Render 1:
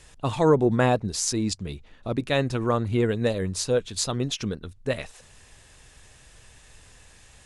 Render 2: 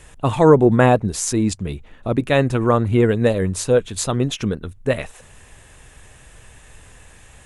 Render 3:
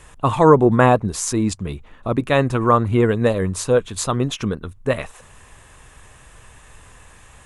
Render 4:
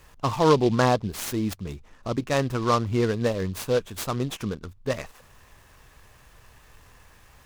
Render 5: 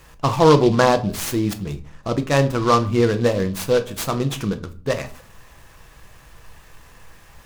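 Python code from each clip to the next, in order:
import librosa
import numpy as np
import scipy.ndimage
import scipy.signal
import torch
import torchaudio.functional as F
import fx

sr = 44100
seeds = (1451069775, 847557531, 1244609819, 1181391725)

y1 = fx.peak_eq(x, sr, hz=4800.0, db=-10.0, octaves=0.93)
y1 = F.gain(torch.from_numpy(y1), 7.5).numpy()
y2 = fx.peak_eq(y1, sr, hz=1100.0, db=7.5, octaves=0.56)
y2 = F.gain(torch.from_numpy(y2), -1.0).numpy()
y3 = fx.noise_mod_delay(y2, sr, seeds[0], noise_hz=3400.0, depth_ms=0.034)
y3 = F.gain(torch.from_numpy(y3), -7.0).numpy()
y4 = fx.room_shoebox(y3, sr, seeds[1], volume_m3=290.0, walls='furnished', distance_m=0.71)
y4 = F.gain(torch.from_numpy(y4), 5.0).numpy()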